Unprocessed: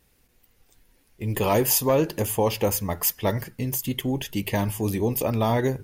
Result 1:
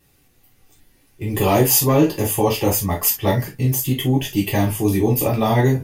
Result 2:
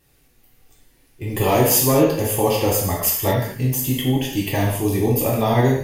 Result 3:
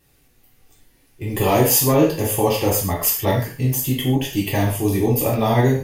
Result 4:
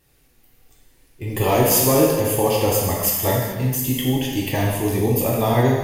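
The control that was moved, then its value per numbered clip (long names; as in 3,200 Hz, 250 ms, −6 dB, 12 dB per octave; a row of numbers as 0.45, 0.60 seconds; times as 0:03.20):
reverb whose tail is shaped and stops, gate: 90, 260, 170, 470 milliseconds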